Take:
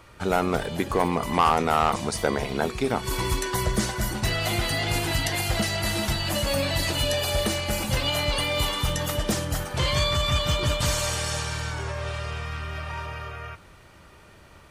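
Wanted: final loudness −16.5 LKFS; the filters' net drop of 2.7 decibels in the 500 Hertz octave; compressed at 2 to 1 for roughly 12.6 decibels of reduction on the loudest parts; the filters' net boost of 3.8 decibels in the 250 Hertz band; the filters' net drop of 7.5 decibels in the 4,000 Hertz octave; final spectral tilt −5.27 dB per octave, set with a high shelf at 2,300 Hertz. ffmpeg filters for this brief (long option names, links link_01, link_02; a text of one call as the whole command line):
ffmpeg -i in.wav -af "equalizer=frequency=250:width_type=o:gain=6.5,equalizer=frequency=500:width_type=o:gain=-5,highshelf=frequency=2300:gain=-5,equalizer=frequency=4000:width_type=o:gain=-5.5,acompressor=threshold=-42dB:ratio=2,volume=21dB" out.wav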